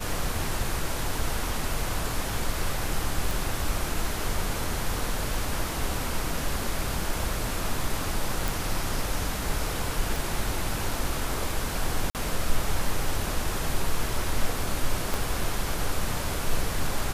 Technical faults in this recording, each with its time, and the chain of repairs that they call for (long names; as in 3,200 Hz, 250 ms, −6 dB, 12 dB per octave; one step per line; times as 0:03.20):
0:03.31: click
0:08.48: click
0:10.16: click
0:12.10–0:12.15: drop-out 48 ms
0:15.14: click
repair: click removal
repair the gap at 0:12.10, 48 ms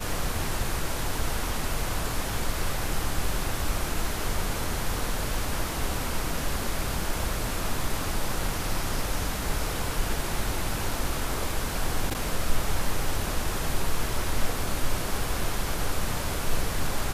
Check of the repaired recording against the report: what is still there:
0:10.16: click
0:15.14: click